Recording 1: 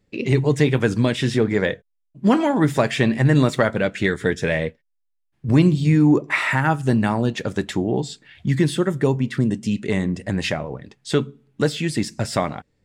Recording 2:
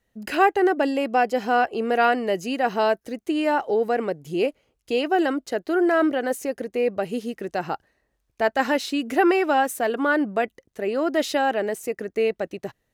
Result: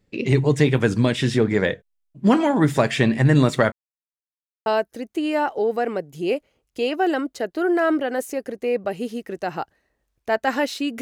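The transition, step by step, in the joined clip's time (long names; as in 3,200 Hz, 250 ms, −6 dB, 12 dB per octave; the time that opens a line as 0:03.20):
recording 1
0:03.72–0:04.66: silence
0:04.66: continue with recording 2 from 0:02.78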